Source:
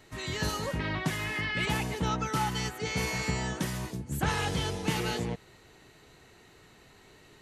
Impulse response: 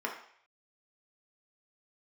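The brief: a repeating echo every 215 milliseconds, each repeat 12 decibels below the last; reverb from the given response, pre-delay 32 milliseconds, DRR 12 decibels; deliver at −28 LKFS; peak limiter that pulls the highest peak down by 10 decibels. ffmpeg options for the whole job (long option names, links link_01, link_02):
-filter_complex "[0:a]alimiter=level_in=1dB:limit=-24dB:level=0:latency=1,volume=-1dB,aecho=1:1:215|430|645:0.251|0.0628|0.0157,asplit=2[link_01][link_02];[1:a]atrim=start_sample=2205,adelay=32[link_03];[link_02][link_03]afir=irnorm=-1:irlink=0,volume=-17.5dB[link_04];[link_01][link_04]amix=inputs=2:normalize=0,volume=6dB"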